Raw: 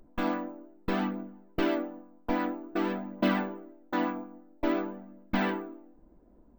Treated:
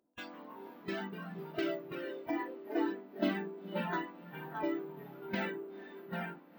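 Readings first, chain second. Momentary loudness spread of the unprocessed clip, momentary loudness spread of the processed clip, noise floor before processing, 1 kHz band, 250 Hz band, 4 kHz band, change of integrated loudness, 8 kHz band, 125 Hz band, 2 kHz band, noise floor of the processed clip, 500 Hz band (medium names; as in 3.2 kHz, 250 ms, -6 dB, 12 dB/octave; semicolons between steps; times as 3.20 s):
13 LU, 12 LU, -59 dBFS, -7.0 dB, -7.0 dB, -5.0 dB, -6.5 dB, no reading, -5.0 dB, -4.5 dB, -57 dBFS, -4.5 dB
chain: ever faster or slower copies 136 ms, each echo -2 st, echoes 3, each echo -6 dB; high-pass 230 Hz 12 dB/octave; compression 2.5:1, threshold -30 dBFS, peak gain reduction 6 dB; echo that smears into a reverb 470 ms, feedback 43%, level -6 dB; spectral noise reduction 16 dB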